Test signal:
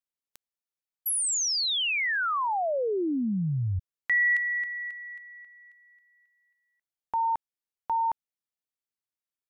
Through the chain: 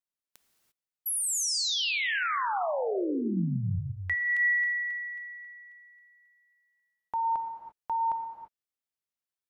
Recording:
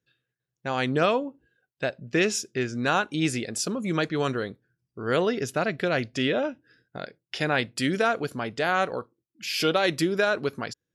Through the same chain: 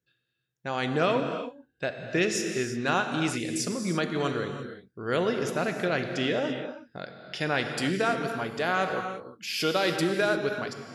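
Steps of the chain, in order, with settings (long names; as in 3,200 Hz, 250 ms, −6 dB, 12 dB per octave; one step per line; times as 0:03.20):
reverb whose tail is shaped and stops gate 370 ms flat, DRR 5 dB
level −3 dB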